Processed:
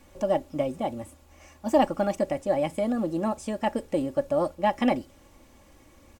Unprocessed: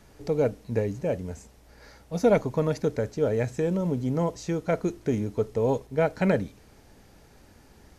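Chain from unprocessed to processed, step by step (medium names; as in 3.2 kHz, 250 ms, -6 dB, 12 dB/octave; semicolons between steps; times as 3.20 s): comb 4.6 ms, depth 54%; tape speed +29%; trim -2 dB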